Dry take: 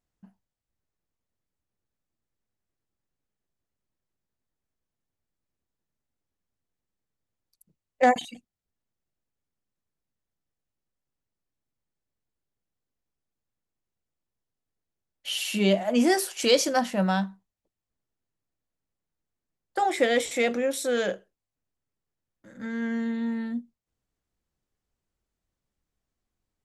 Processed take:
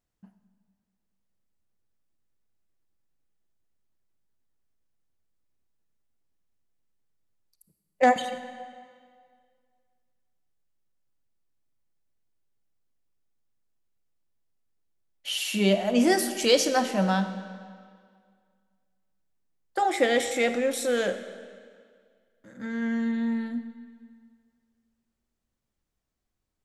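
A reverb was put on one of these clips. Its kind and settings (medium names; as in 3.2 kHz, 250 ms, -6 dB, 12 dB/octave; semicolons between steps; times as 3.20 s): algorithmic reverb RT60 2 s, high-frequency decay 0.9×, pre-delay 10 ms, DRR 10 dB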